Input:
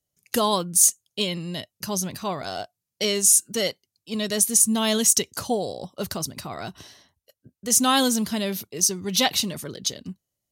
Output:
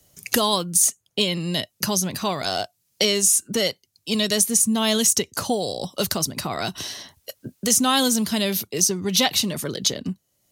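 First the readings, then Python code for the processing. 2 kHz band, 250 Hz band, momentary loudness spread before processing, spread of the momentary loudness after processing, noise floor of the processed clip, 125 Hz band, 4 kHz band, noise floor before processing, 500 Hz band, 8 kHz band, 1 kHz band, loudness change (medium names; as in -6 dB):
+3.0 dB, +2.5 dB, 17 LU, 14 LU, -72 dBFS, +4.0 dB, +4.0 dB, -85 dBFS, +2.5 dB, 0.0 dB, +1.0 dB, +0.5 dB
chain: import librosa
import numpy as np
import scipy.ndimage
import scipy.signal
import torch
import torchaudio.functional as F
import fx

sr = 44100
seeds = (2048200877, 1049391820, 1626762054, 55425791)

y = fx.band_squash(x, sr, depth_pct=70)
y = F.gain(torch.from_numpy(y), 2.5).numpy()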